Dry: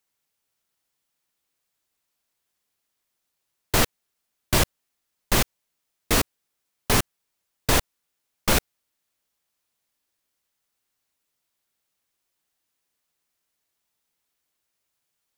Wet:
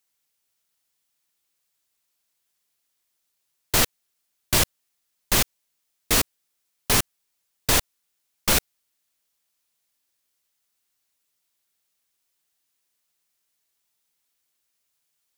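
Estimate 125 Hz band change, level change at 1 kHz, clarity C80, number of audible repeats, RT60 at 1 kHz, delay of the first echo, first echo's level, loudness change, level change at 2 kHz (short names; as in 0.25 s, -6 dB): -3.0 dB, -2.0 dB, none, none, none, none, none, +1.5 dB, 0.0 dB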